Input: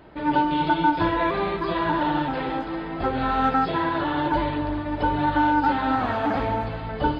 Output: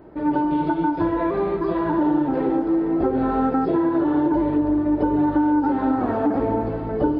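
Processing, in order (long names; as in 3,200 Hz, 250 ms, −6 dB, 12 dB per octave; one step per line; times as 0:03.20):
parametric band 350 Hz +7 dB 1.2 octaves, from 0:01.98 +14.5 dB
downward compressor, threshold −16 dBFS, peak gain reduction 7 dB
parametric band 3,400 Hz −13.5 dB 1.7 octaves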